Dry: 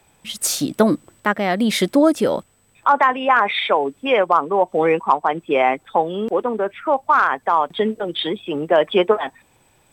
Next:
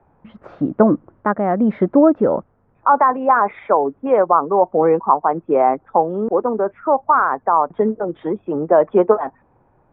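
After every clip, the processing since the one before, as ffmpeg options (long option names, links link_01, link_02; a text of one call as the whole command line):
ffmpeg -i in.wav -af "lowpass=frequency=1300:width=0.5412,lowpass=frequency=1300:width=1.3066,volume=2.5dB" out.wav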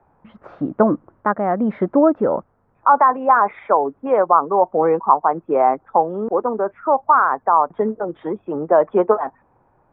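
ffmpeg -i in.wav -af "equalizer=frequency=1100:width=0.69:gain=5,volume=-4dB" out.wav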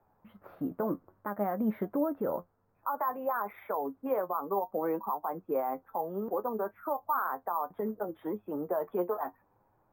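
ffmpeg -i in.wav -af "alimiter=limit=-11.5dB:level=0:latency=1:release=87,flanger=delay=9.3:depth=2.1:regen=50:speed=0.61:shape=sinusoidal,acrusher=samples=3:mix=1:aa=0.000001,volume=-7dB" out.wav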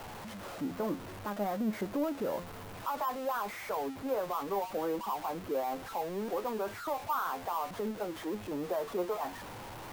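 ffmpeg -i in.wav -af "aeval=exprs='val(0)+0.5*0.0178*sgn(val(0))':channel_layout=same,volume=-4dB" out.wav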